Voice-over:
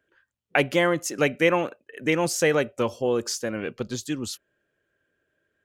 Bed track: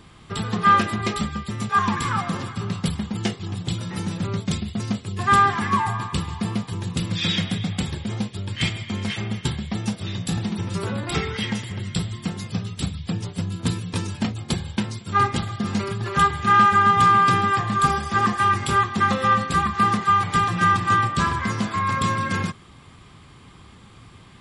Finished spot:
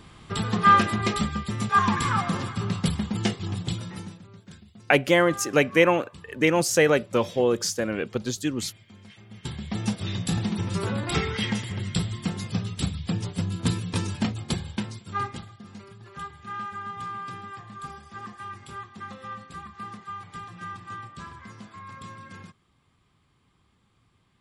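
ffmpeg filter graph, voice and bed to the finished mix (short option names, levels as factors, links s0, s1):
-filter_complex "[0:a]adelay=4350,volume=1.26[s0];[1:a]volume=10.6,afade=t=out:st=3.51:d=0.71:silence=0.0841395,afade=t=in:st=9.29:d=0.59:silence=0.0891251,afade=t=out:st=14.15:d=1.43:silence=0.11885[s1];[s0][s1]amix=inputs=2:normalize=0"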